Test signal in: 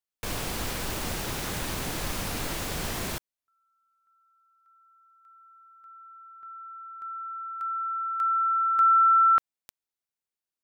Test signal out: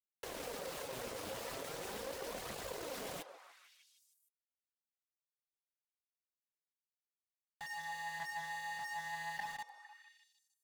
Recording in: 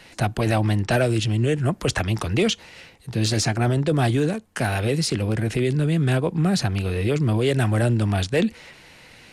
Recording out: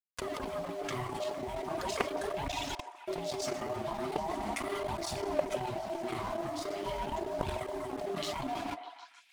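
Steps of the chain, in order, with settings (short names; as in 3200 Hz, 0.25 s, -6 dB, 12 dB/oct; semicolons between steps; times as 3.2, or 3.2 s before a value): low shelf 130 Hz +4 dB; ring modulator 500 Hz; non-linear reverb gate 0.42 s falling, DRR -0.5 dB; reverb removal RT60 1.5 s; HPF 40 Hz 12 dB/oct; level quantiser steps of 22 dB; sample leveller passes 1; negative-ratio compressor -31 dBFS, ratio -1; sample gate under -42 dBFS; flange 0.4 Hz, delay 0.5 ms, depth 9.5 ms, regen +39%; delay with a stepping band-pass 0.152 s, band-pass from 640 Hz, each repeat 0.7 oct, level -6 dB; Doppler distortion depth 0.32 ms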